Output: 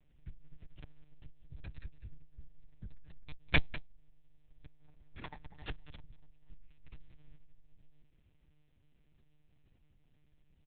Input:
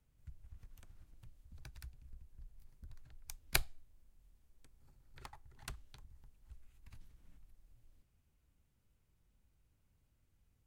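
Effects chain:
parametric band 1,200 Hz −10.5 dB 0.52 octaves
single-tap delay 197 ms −15.5 dB
one-pitch LPC vocoder at 8 kHz 150 Hz
level +7.5 dB

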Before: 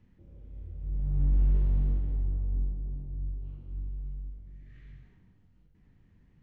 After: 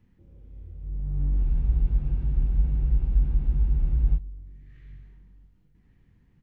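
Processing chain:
notch filter 610 Hz, Q 12
on a send: single-tap delay 1,155 ms −15 dB
on the sum: frozen spectrum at 0:01.46, 2.71 s

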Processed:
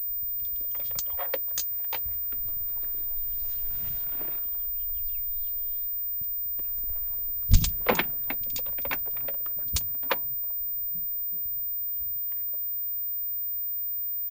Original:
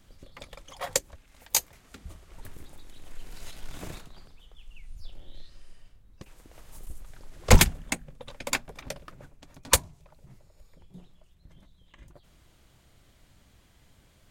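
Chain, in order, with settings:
three-band delay without the direct sound lows, highs, mids 30/380 ms, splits 210/3,600 Hz
switching amplifier with a slow clock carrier 15,000 Hz
level −2 dB

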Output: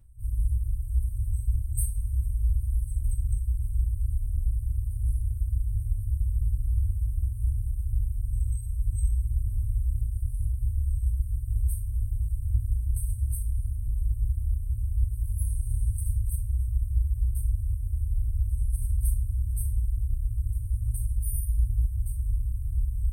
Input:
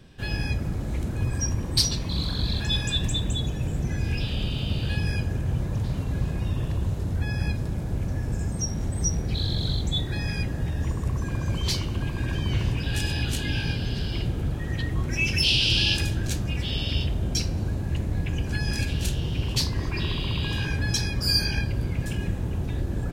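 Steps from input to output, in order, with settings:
brick-wall band-stop 110–8,100 Hz
coupled-rooms reverb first 0.26 s, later 1.6 s, from −22 dB, DRR −4.5 dB
level −4.5 dB

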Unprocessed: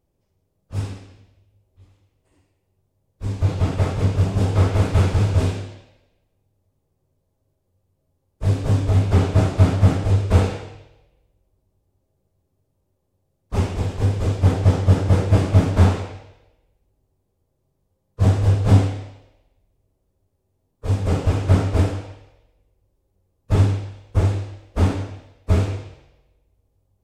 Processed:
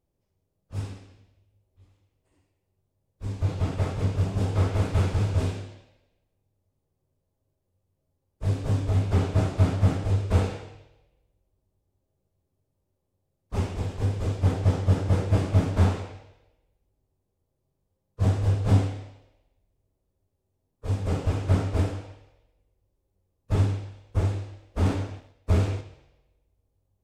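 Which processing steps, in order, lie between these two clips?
0:24.85–0:25.81: leveller curve on the samples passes 1
level −6.5 dB

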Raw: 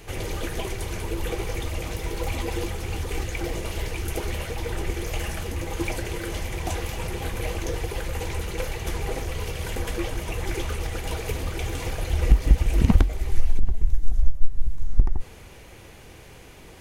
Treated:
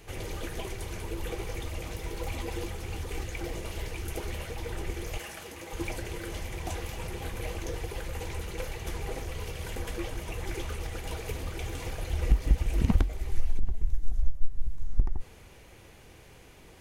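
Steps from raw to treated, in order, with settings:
0:05.18–0:05.73: high-pass filter 430 Hz 6 dB per octave
level −6.5 dB

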